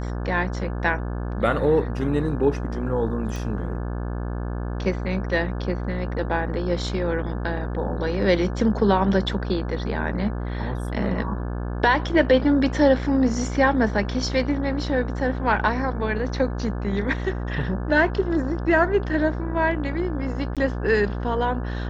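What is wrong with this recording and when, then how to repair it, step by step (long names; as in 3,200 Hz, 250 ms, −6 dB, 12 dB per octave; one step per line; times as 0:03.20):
mains buzz 60 Hz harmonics 29 −28 dBFS
0:03.36: click
0:20.55–0:20.57: drop-out 17 ms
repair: click removal
hum removal 60 Hz, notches 29
repair the gap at 0:20.55, 17 ms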